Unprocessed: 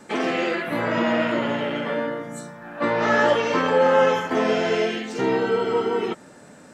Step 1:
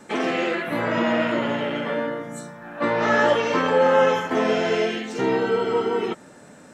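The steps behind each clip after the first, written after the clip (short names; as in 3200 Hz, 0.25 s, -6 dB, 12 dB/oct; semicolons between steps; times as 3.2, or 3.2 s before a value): notch 4700 Hz, Q 20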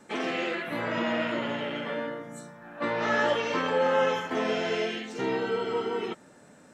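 dynamic EQ 3400 Hz, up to +4 dB, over -37 dBFS, Q 0.72; gain -7.5 dB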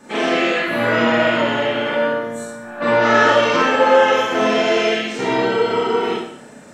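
Schroeder reverb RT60 0.65 s, combs from 26 ms, DRR -5 dB; gain +6.5 dB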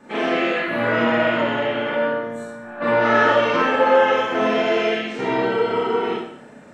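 tone controls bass 0 dB, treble -11 dB; gain -2.5 dB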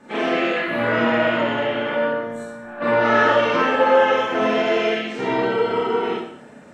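Vorbis 64 kbps 44100 Hz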